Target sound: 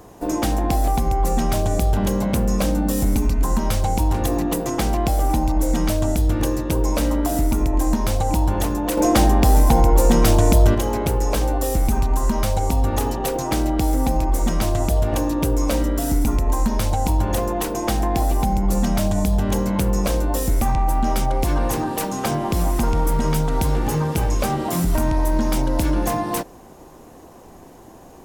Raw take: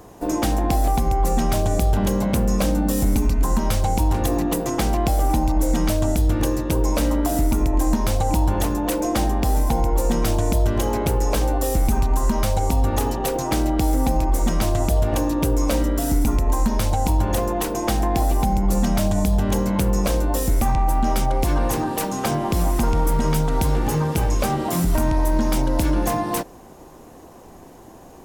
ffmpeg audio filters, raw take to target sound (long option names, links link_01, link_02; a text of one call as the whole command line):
ffmpeg -i in.wav -filter_complex "[0:a]asettb=1/sr,asplit=3[link_01][link_02][link_03];[link_01]atrim=end=8.974[link_04];[link_02]atrim=start=8.97:end=10.75,asetpts=PTS-STARTPTS,afade=type=in:duration=0.004:curve=qsin,afade=type=out:start_time=1.776:duration=0.004:curve=qsin,acontrast=55[link_05];[link_03]atrim=start=10.746[link_06];[link_04][link_05]acrossfade=duration=0.004:curve1=hsin:curve2=qsin[link_07];[link_07][link_06]acrossfade=duration=0.004:curve1=qsin:curve2=hsin" out.wav